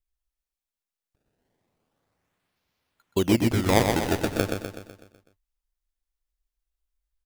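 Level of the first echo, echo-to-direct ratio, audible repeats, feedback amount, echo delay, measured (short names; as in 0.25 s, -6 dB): -5.0 dB, -3.5 dB, 6, 52%, 0.125 s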